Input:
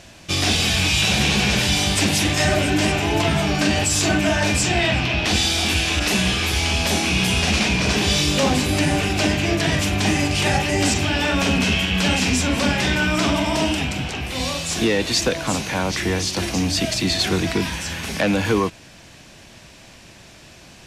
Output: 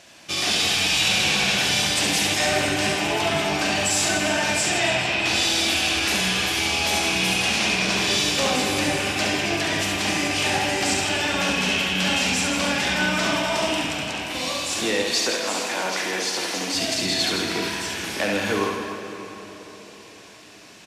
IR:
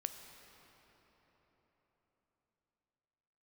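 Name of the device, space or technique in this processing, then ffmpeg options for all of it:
cathedral: -filter_complex "[0:a]highpass=f=460:p=1[a];[1:a]atrim=start_sample=2205[b];[a][b]afir=irnorm=-1:irlink=0,asettb=1/sr,asplit=3[c][d][e];[c]atrim=end=15.034[f];[d]atrim=start=15.03:end=16.74,asetpts=PTS-STARTPTS,afade=t=in:d=0.004:c=qsin,afade=t=out:st=1.706:d=0.004:c=qsin,highpass=260[g];[e]atrim=start=16.736[h];[f][g]acrossfade=d=0.004:c1=hsin:c2=qsin[i];[i][h]acrossfade=d=0.004:c1=qsin:c2=hsin,aecho=1:1:70|161|279.3|433.1|633:0.631|0.398|0.251|0.158|0.1,volume=-1dB"

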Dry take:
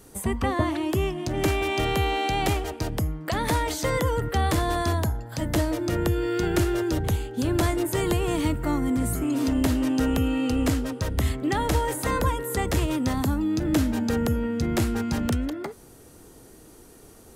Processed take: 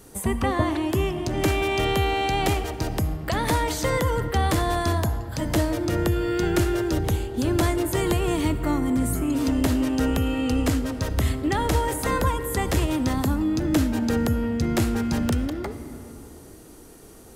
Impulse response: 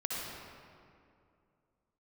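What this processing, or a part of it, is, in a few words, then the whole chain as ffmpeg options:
compressed reverb return: -filter_complex "[0:a]asplit=2[a][b];[1:a]atrim=start_sample=2205[c];[b][c]afir=irnorm=-1:irlink=0,acompressor=threshold=-21dB:ratio=6,volume=-10dB[d];[a][d]amix=inputs=2:normalize=0"

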